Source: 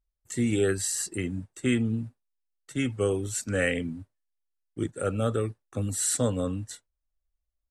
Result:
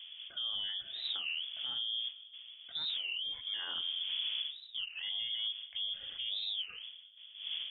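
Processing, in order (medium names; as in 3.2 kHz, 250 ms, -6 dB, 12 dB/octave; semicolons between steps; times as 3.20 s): wind noise 450 Hz -40 dBFS; gate with hold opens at -46 dBFS; bass shelf 270 Hz +9.5 dB; peak limiter -25 dBFS, peak gain reduction 16.5 dB; 3.01–3.54 s: frequency shift -310 Hz; reverberation RT60 1.9 s, pre-delay 7 ms, DRR 14 dB; frequency inversion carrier 3.4 kHz; warped record 33 1/3 rpm, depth 250 cents; trim -6.5 dB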